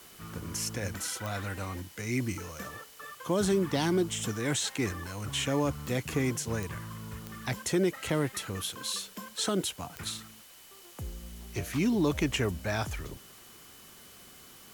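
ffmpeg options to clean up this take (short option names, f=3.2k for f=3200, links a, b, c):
-af "adeclick=t=4,bandreject=f=3k:w=30,afwtdn=0.0022"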